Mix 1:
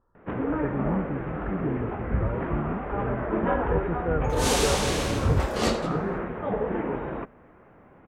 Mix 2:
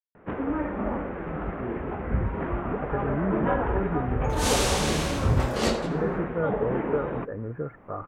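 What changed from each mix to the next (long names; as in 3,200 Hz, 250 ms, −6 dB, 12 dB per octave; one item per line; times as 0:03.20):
speech: entry +2.30 s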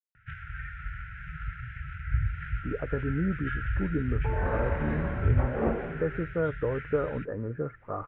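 first sound: add linear-phase brick-wall band-stop 150–1,300 Hz
second sound: add Gaussian smoothing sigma 6.8 samples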